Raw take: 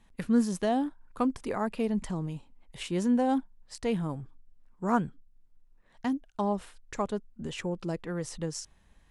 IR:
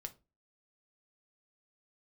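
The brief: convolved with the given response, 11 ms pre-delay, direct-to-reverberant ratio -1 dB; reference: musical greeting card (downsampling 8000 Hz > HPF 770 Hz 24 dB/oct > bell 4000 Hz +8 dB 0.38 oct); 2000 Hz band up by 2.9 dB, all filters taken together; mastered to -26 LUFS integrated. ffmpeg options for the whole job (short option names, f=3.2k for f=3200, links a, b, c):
-filter_complex "[0:a]equalizer=f=2k:t=o:g=3.5,asplit=2[a][b];[1:a]atrim=start_sample=2205,adelay=11[c];[b][c]afir=irnorm=-1:irlink=0,volume=5dB[d];[a][d]amix=inputs=2:normalize=0,aresample=8000,aresample=44100,highpass=f=770:w=0.5412,highpass=f=770:w=1.3066,equalizer=f=4k:t=o:w=0.38:g=8,volume=10dB"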